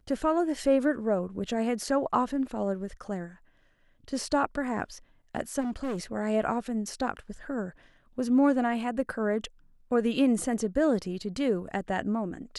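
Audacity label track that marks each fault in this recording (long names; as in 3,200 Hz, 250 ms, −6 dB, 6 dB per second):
5.600000	6.040000	clipping −28.5 dBFS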